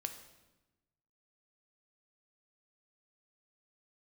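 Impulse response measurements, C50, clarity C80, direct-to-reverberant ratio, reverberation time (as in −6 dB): 9.5 dB, 11.5 dB, 6.5 dB, 1.1 s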